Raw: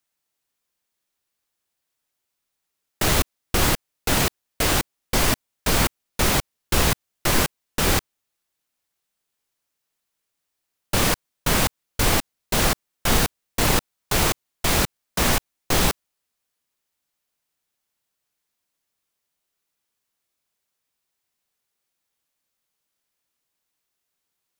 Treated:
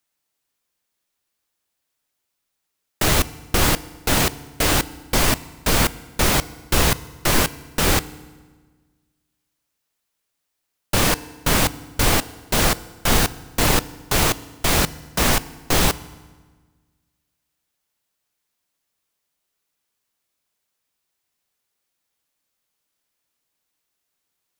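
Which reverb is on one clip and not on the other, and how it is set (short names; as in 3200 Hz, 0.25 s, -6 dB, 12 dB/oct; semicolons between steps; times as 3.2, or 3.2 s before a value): FDN reverb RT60 1.4 s, low-frequency decay 1.25×, high-frequency decay 0.8×, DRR 16.5 dB; gain +2 dB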